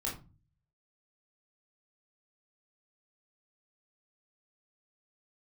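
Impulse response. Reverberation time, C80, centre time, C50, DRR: 0.30 s, 14.5 dB, 28 ms, 7.5 dB, −4.0 dB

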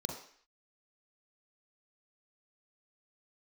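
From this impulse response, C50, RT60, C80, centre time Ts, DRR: 4.0 dB, 0.55 s, 8.0 dB, 36 ms, 0.5 dB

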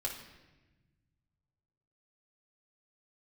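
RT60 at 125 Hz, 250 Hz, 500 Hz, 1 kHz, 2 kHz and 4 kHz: 2.8, 1.9, 1.3, 1.0, 1.2, 0.95 seconds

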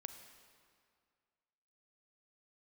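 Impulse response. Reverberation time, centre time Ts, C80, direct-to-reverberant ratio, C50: 2.1 s, 28 ms, 9.0 dB, 7.5 dB, 8.0 dB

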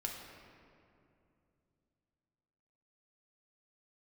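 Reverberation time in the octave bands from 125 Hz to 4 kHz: 3.8, 3.4, 2.9, 2.4, 2.0, 1.4 seconds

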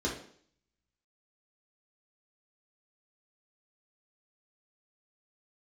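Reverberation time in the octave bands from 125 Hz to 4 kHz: 0.60, 0.60, 0.60, 0.55, 0.55, 0.60 seconds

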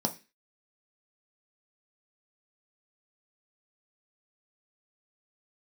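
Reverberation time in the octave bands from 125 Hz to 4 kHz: 0.30, 0.35, 0.30, 0.25, 0.40, 0.35 seconds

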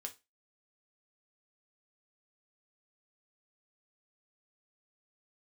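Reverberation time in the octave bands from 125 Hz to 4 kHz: 0.20, 0.25, 0.25, 0.25, 0.25, 0.25 seconds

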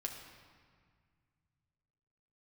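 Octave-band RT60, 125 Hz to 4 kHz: 3.4, 2.6, 1.8, 1.9, 1.8, 1.4 seconds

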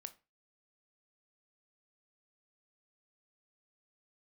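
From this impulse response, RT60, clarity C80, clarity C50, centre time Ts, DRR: 0.30 s, 24.0 dB, 17.5 dB, 4 ms, 10.5 dB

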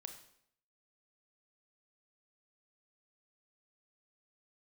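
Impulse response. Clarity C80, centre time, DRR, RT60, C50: 11.5 dB, 16 ms, 5.5 dB, 0.70 s, 9.0 dB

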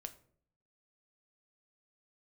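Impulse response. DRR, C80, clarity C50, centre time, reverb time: 8.0 dB, 19.0 dB, 15.5 dB, 5 ms, 0.55 s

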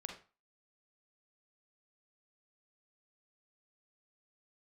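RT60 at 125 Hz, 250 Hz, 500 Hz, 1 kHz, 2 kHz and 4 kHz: 0.35, 0.30, 0.30, 0.35, 0.30, 0.30 seconds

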